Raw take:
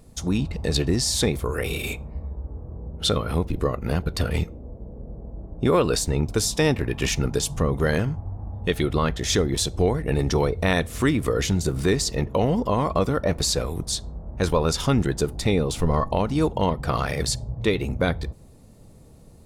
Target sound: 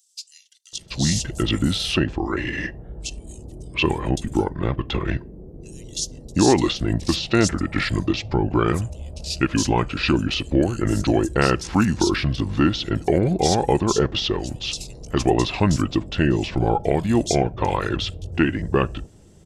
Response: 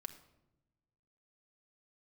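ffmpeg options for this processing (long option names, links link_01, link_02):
-filter_complex "[0:a]lowshelf=frequency=93:gain=-11,asetrate=33038,aresample=44100,atempo=1.33484,acrossover=split=4400[link_01][link_02];[link_01]adelay=730[link_03];[link_03][link_02]amix=inputs=2:normalize=0,volume=4dB"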